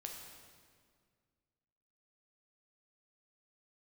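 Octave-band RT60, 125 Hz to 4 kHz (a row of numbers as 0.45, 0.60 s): 2.4, 2.3, 2.0, 1.8, 1.7, 1.5 s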